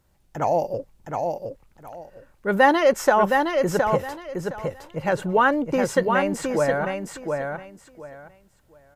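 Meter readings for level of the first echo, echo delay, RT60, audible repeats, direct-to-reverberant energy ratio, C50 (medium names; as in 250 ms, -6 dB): -4.5 dB, 715 ms, no reverb, 3, no reverb, no reverb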